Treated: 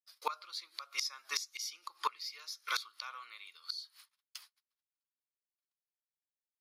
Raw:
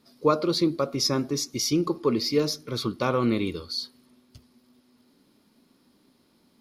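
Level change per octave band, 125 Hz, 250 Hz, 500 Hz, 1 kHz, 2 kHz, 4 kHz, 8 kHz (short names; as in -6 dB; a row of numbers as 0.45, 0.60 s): under -40 dB, under -40 dB, -29.5 dB, -9.0 dB, -3.5 dB, -9.5 dB, -10.5 dB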